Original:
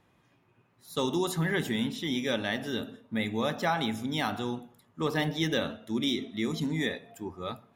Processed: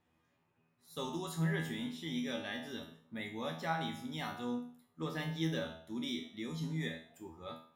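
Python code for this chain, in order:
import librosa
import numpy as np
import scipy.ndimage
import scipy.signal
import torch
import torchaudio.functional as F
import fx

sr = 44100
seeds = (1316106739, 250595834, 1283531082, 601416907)

y = fx.comb_fb(x, sr, f0_hz=81.0, decay_s=0.46, harmonics='all', damping=0.0, mix_pct=90)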